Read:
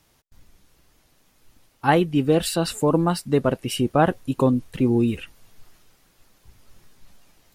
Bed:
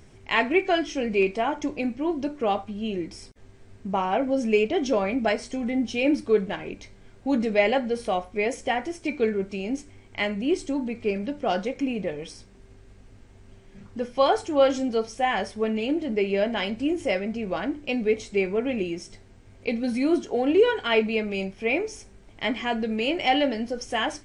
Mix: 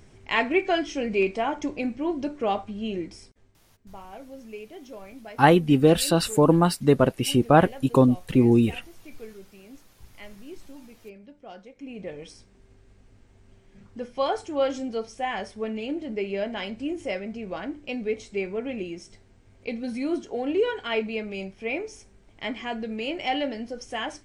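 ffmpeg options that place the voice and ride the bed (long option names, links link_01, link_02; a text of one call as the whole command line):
ffmpeg -i stem1.wav -i stem2.wav -filter_complex "[0:a]adelay=3550,volume=1.5dB[link_01];[1:a]volume=12.5dB,afade=type=out:start_time=2.98:duration=0.61:silence=0.133352,afade=type=in:start_time=11.76:duration=0.4:silence=0.211349[link_02];[link_01][link_02]amix=inputs=2:normalize=0" out.wav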